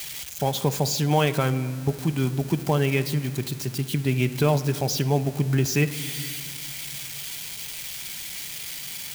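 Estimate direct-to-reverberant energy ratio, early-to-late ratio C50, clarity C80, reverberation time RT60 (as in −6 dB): 9.0 dB, 13.5 dB, 14.5 dB, 2.0 s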